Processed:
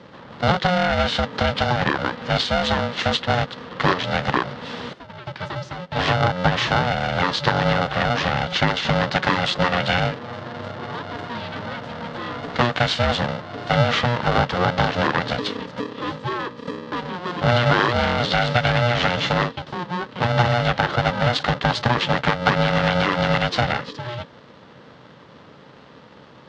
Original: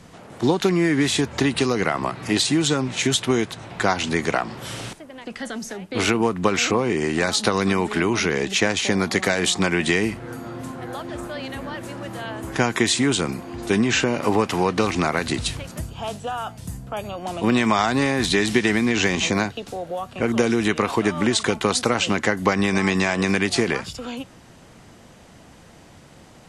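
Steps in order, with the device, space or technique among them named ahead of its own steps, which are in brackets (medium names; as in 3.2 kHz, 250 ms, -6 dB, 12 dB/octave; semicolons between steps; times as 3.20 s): ring modulator pedal into a guitar cabinet (polarity switched at an audio rate 360 Hz; cabinet simulation 93–4100 Hz, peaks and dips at 140 Hz +4 dB, 680 Hz -4 dB, 2.4 kHz -7 dB); trim +2.5 dB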